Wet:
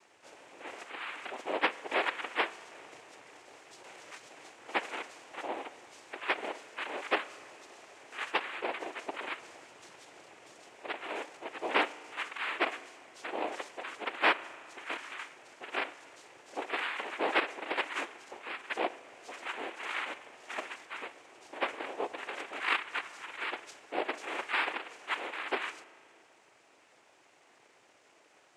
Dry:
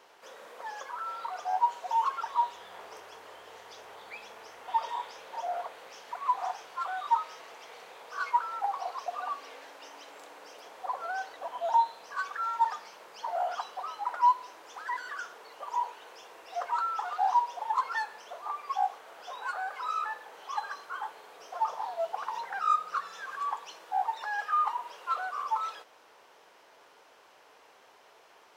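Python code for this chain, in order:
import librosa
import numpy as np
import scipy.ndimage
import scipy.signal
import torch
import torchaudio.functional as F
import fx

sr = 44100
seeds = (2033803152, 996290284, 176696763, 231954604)

y = fx.noise_vocoder(x, sr, seeds[0], bands=4)
y = fx.rev_spring(y, sr, rt60_s=2.3, pass_ms=(36,), chirp_ms=60, drr_db=17.5)
y = fx.band_squash(y, sr, depth_pct=70, at=(3.84, 4.5))
y = y * librosa.db_to_amplitude(-4.0)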